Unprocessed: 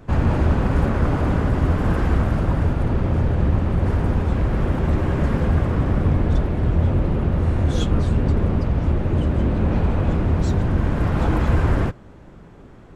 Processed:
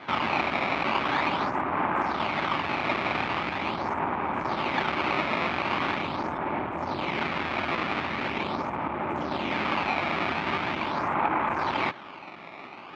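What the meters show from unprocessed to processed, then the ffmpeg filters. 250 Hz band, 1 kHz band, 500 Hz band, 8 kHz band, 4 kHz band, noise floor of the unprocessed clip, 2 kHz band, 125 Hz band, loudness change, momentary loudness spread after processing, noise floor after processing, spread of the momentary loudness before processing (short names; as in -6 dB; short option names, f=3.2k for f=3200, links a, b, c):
-10.0 dB, +5.0 dB, -5.5 dB, n/a, +6.5 dB, -43 dBFS, +5.5 dB, -22.5 dB, -7.0 dB, 5 LU, -43 dBFS, 2 LU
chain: -filter_complex "[0:a]acrossover=split=3000[a][b];[b]acompressor=threshold=-55dB:ratio=4:attack=1:release=60[c];[a][c]amix=inputs=2:normalize=0,equalizer=f=880:t=o:w=0.38:g=10,alimiter=limit=-14dB:level=0:latency=1:release=133,acrusher=samples=16:mix=1:aa=0.000001:lfo=1:lforange=25.6:lforate=0.42,asoftclip=type=tanh:threshold=-20dB,highpass=370,equalizer=f=470:t=q:w=4:g=-9,equalizer=f=1.2k:t=q:w=4:g=6,equalizer=f=2.3k:t=q:w=4:g=8,lowpass=f=3.8k:w=0.5412,lowpass=f=3.8k:w=1.3066,volume=5dB"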